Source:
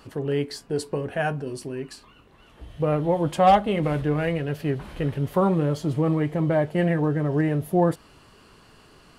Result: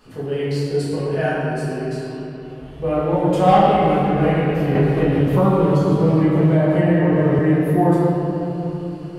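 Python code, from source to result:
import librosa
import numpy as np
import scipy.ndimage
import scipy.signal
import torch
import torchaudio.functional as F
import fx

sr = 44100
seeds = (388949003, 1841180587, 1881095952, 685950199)

y = fx.room_shoebox(x, sr, seeds[0], volume_m3=170.0, walls='hard', distance_m=1.4)
y = fx.band_squash(y, sr, depth_pct=100, at=(4.75, 7.39))
y = y * 10.0 ** (-5.5 / 20.0)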